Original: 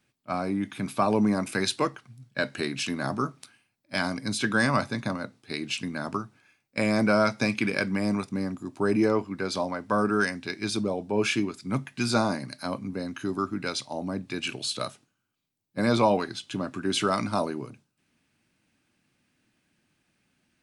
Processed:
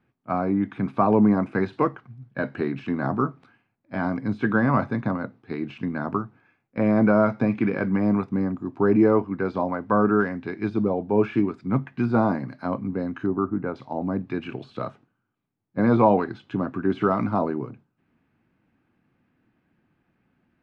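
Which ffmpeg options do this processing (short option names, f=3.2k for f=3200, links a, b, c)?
-filter_complex "[0:a]asettb=1/sr,asplit=3[a][b][c];[a]atrim=end=13.264[d];[b]atrim=start=13.26:end=13.76,asetpts=PTS-STARTPTS,afade=t=in:d=0.004:c=qsin,afade=t=out:st=0.496:d=0.004:c=qsin,lowpass=1.2k[e];[c]atrim=start=13.756[f];[d][e]acrossfade=d=0.004:c1=hsin:c2=qsin[g];[g][f]acrossfade=d=0.004:c1=qsin:c2=hsin,deesser=0.95,lowpass=1.4k,bandreject=f=590:w=12,volume=5.5dB"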